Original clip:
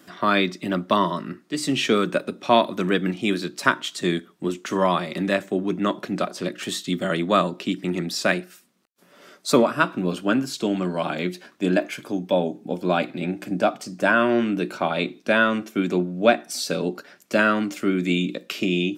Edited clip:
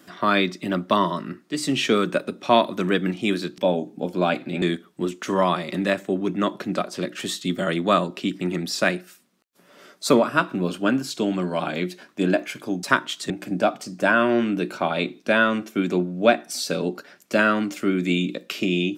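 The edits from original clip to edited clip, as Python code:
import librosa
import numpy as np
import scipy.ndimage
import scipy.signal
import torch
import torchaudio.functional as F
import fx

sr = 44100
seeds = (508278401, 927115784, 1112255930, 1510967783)

y = fx.edit(x, sr, fx.swap(start_s=3.58, length_s=0.47, other_s=12.26, other_length_s=1.04), tone=tone)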